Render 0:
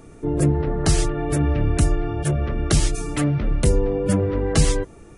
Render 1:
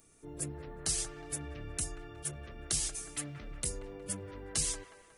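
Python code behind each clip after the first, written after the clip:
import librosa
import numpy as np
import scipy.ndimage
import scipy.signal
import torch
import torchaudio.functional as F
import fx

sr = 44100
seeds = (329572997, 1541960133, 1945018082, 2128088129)

y = librosa.effects.preemphasis(x, coef=0.9, zi=[0.0])
y = fx.echo_wet_bandpass(y, sr, ms=182, feedback_pct=50, hz=970.0, wet_db=-6.5)
y = y * 10.0 ** (-4.5 / 20.0)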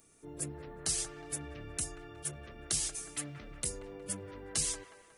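y = fx.low_shelf(x, sr, hz=74.0, db=-7.5)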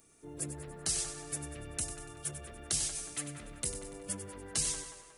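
y = fx.echo_feedback(x, sr, ms=96, feedback_pct=52, wet_db=-10)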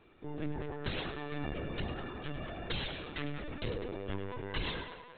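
y = fx.lpc_vocoder(x, sr, seeds[0], excitation='pitch_kept', order=16)
y = y * 10.0 ** (6.5 / 20.0)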